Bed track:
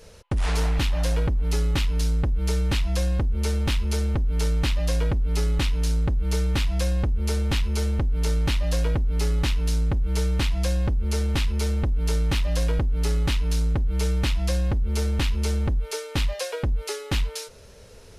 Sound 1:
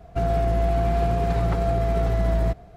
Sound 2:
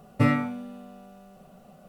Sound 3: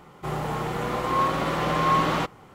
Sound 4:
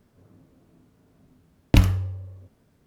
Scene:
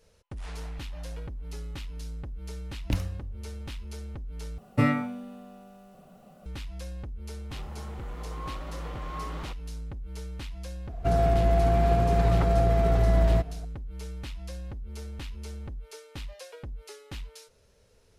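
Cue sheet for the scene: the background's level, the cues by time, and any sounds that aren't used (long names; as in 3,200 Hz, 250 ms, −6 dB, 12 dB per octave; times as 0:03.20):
bed track −15 dB
0:01.16: mix in 4 −12.5 dB
0:04.58: overwrite with 2 −1.5 dB
0:07.27: mix in 3 −17.5 dB
0:10.89: mix in 1 −0.5 dB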